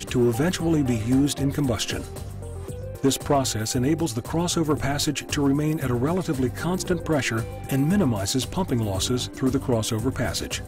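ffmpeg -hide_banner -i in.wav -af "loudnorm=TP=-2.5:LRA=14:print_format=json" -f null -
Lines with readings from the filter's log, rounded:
"input_i" : "-24.2",
"input_tp" : "-11.2",
"input_lra" : "1.1",
"input_thresh" : "-34.4",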